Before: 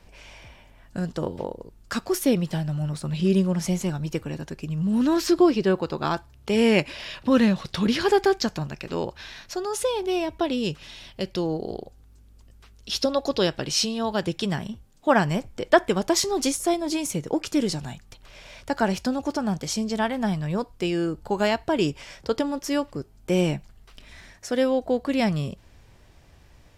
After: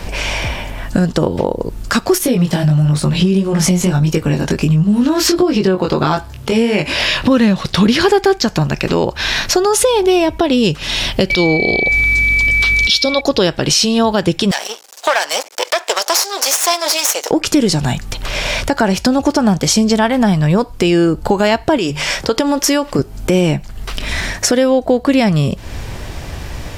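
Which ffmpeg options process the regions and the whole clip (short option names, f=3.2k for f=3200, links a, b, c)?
-filter_complex "[0:a]asettb=1/sr,asplit=3[a][b][c];[a]atrim=end=2.184[d];[b]atrim=start=2.18:end=7.28,asetpts=PTS-STARTPTS,afade=t=in:d=0.004:c=qsin,afade=t=out:st=5.096:d=0.004:c=qsin,acompressor=threshold=-23dB:ratio=6:attack=3.2:release=140:knee=1:detection=peak,flanger=delay=19:depth=3.6:speed=1.5[e];[c]atrim=start=7.276[f];[d][e]acrossfade=d=0.004:c1=hsin:c2=qsin[g];[g][f]acrossfade=d=0.004:c1=qsin:c2=hsin,asettb=1/sr,asplit=3[h][i][j];[h]atrim=end=11.304[k];[i]atrim=start=11.3:end=13.21,asetpts=PTS-STARTPTS,afade=t=in:d=0.004:c=qsin,afade=t=out:st=1.906:d=0.004:c=qsin,equalizer=f=3.9k:t=o:w=0.98:g=12.5,acompressor=mode=upward:threshold=-27dB:ratio=2.5:attack=3.2:release=140:knee=2.83:detection=peak,aeval=exprs='val(0)+0.0355*sin(2*PI*2300*n/s)':c=same[l];[j]atrim=start=13.206[m];[k][l]acrossfade=d=0.004:c1=hsin:c2=qsin[n];[n][m]acrossfade=d=0.004:c1=qsin:c2=hsin,asettb=1/sr,asplit=3[o][p][q];[o]atrim=end=14.514[r];[p]atrim=start=14.51:end=17.31,asetpts=PTS-STARTPTS,afade=t=in:d=0.004:c=qsin,afade=t=out:st=2.796:d=0.004:c=qsin,equalizer=f=5.6k:w=0.91:g=11.5,aeval=exprs='max(val(0),0)':c=same,highpass=f=510:w=0.5412,highpass=f=510:w=1.3066[s];[q]atrim=start=17.306[t];[r][s]acrossfade=d=0.004:c1=hsin:c2=qsin[u];[u][t]acrossfade=d=0.004:c1=qsin:c2=hsin,asettb=1/sr,asplit=3[v][w][x];[v]atrim=end=21.784[y];[w]atrim=start=21.78:end=22.99,asetpts=PTS-STARTPTS,afade=t=in:d=0.004:c=qsin,afade=t=out:st=1.206:d=0.004:c=qsin,lowshelf=f=420:g=-6,bandreject=f=50:t=h:w=6,bandreject=f=100:t=h:w=6,bandreject=f=150:t=h:w=6,acompressor=threshold=-32dB:ratio=2:attack=3.2:release=140:knee=1:detection=peak[z];[x]atrim=start=22.986[aa];[y][z]acrossfade=d=0.004:c1=hsin:c2=qsin[ab];[ab][aa]acrossfade=d=0.004:c1=qsin:c2=hsin,acompressor=threshold=-39dB:ratio=4,alimiter=level_in=28dB:limit=-1dB:release=50:level=0:latency=1,volume=-1dB"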